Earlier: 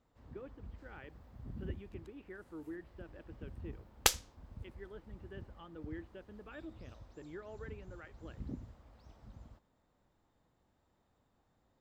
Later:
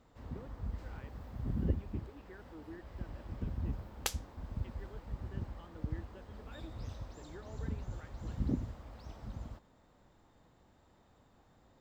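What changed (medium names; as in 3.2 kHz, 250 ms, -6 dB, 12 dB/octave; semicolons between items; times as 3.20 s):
speech -4.0 dB; first sound +10.0 dB; second sound -8.5 dB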